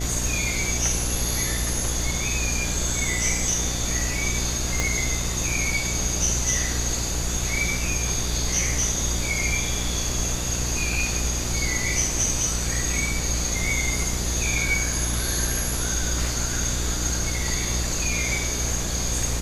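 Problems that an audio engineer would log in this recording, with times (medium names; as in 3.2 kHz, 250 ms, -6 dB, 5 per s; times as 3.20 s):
buzz 60 Hz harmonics 12 -29 dBFS
4.80 s: pop -9 dBFS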